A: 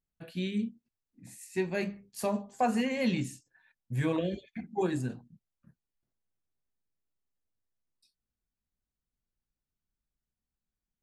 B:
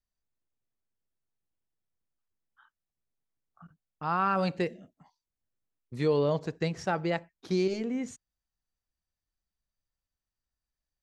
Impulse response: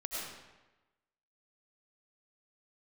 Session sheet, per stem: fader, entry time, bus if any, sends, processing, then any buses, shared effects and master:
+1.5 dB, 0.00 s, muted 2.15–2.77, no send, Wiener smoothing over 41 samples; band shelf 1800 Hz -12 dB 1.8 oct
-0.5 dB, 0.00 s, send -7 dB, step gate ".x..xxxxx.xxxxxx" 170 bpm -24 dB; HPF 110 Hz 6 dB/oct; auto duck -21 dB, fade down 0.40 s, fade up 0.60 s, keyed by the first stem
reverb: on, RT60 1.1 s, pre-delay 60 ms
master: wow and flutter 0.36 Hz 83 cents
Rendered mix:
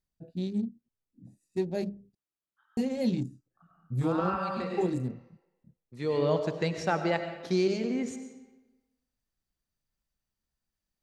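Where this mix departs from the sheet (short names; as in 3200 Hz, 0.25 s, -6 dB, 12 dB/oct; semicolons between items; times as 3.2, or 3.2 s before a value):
stem B: missing step gate ".x..xxxxx.xxxxxx" 170 bpm -24 dB; master: missing wow and flutter 0.36 Hz 83 cents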